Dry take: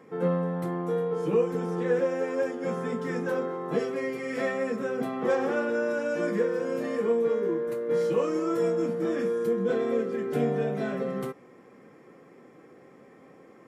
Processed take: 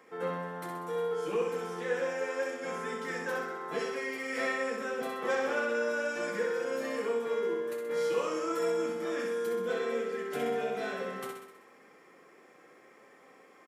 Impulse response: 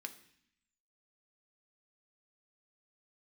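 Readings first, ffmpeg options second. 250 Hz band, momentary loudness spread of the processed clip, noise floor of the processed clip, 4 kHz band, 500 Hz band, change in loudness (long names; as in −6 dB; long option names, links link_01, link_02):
−10.0 dB, 6 LU, −58 dBFS, +3.5 dB, −5.5 dB, −5.0 dB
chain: -filter_complex "[0:a]highpass=frequency=1300:poles=1,asplit=2[link_01][link_02];[link_02]aecho=0:1:64|128|192|256|320|384|448|512:0.562|0.326|0.189|0.11|0.0636|0.0369|0.0214|0.0124[link_03];[link_01][link_03]amix=inputs=2:normalize=0,volume=2dB"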